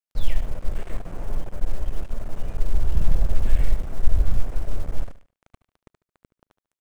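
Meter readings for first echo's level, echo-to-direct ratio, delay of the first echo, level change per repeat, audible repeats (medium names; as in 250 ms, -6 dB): -14.5 dB, -14.0 dB, 73 ms, -10.0 dB, 3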